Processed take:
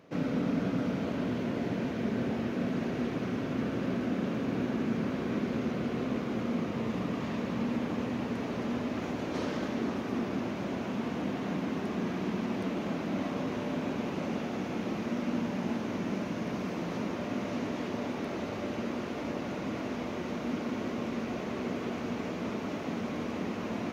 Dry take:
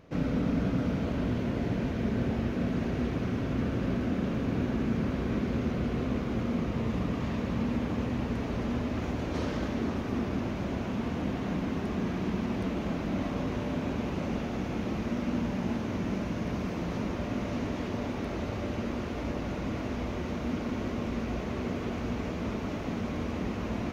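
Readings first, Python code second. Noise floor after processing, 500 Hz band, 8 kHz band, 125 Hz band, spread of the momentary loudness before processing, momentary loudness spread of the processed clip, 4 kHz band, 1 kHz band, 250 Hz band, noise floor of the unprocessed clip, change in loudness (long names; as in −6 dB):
−37 dBFS, 0.0 dB, can't be measured, −5.5 dB, 4 LU, 3 LU, 0.0 dB, 0.0 dB, −1.0 dB, −35 dBFS, −1.5 dB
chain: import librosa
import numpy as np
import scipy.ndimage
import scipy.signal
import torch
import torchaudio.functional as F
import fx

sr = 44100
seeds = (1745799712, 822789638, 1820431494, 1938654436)

y = scipy.signal.sosfilt(scipy.signal.butter(2, 170.0, 'highpass', fs=sr, output='sos'), x)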